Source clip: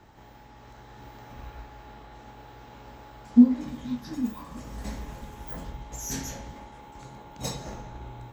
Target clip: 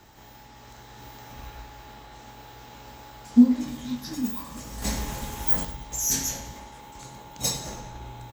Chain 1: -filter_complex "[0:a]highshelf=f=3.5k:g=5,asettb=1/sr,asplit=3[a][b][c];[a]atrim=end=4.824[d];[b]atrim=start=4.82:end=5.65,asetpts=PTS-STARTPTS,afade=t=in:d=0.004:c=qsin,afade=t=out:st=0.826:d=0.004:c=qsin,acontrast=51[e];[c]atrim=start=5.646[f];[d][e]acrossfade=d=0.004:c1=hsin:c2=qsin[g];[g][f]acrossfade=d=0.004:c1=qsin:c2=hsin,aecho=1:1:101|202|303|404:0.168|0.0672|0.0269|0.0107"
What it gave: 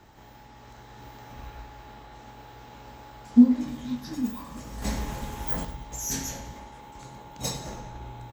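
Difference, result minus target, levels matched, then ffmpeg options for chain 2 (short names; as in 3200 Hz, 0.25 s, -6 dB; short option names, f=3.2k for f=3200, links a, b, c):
8000 Hz band -5.0 dB
-filter_complex "[0:a]highshelf=f=3.5k:g=13.5,asettb=1/sr,asplit=3[a][b][c];[a]atrim=end=4.824[d];[b]atrim=start=4.82:end=5.65,asetpts=PTS-STARTPTS,afade=t=in:d=0.004:c=qsin,afade=t=out:st=0.826:d=0.004:c=qsin,acontrast=51[e];[c]atrim=start=5.646[f];[d][e]acrossfade=d=0.004:c1=hsin:c2=qsin[g];[g][f]acrossfade=d=0.004:c1=qsin:c2=hsin,aecho=1:1:101|202|303|404:0.168|0.0672|0.0269|0.0107"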